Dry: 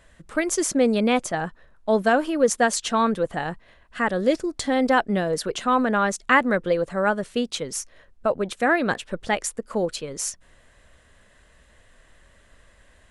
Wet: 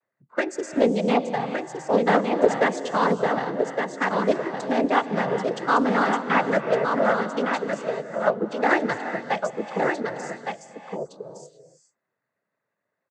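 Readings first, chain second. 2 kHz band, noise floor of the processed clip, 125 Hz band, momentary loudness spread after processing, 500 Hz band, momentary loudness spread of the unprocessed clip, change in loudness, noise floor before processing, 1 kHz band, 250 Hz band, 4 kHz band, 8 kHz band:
-1.0 dB, -82 dBFS, 0.0 dB, 12 LU, +0.5 dB, 10 LU, -0.5 dB, -56 dBFS, +1.0 dB, -1.5 dB, -5.0 dB, -14.0 dB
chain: local Wiener filter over 15 samples; de-esser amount 80%; spectral noise reduction 21 dB; bass shelf 180 Hz -11.5 dB; noise-vocoded speech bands 16; on a send: delay 1163 ms -5.5 dB; on the sum: gated-style reverb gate 460 ms rising, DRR 9.5 dB; loudspeaker Doppler distortion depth 0.14 ms; trim +2 dB

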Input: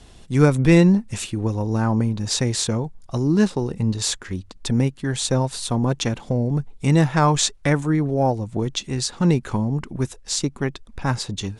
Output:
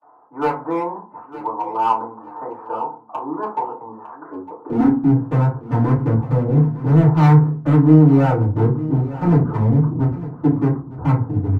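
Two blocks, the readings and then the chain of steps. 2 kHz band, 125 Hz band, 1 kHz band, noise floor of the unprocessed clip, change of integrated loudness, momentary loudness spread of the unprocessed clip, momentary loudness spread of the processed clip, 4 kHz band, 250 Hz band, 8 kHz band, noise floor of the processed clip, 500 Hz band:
-5.0 dB, +5.0 dB, +6.0 dB, -47 dBFS, +4.0 dB, 9 LU, 20 LU, under -15 dB, +3.5 dB, under -30 dB, -43 dBFS, +0.5 dB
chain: elliptic low-pass 1.2 kHz, stop band 70 dB; hum notches 60/120/180/240 Hz; gate with hold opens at -43 dBFS; high-pass 61 Hz 6 dB/octave; high-pass sweep 900 Hz -> 92 Hz, 4.09–5.39 s; overload inside the chain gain 20 dB; doubling 32 ms -13 dB; feedback delay 906 ms, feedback 16%, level -15.5 dB; FDN reverb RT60 0.36 s, low-frequency decay 1.4×, high-frequency decay 0.35×, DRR -9 dB; trim -5 dB

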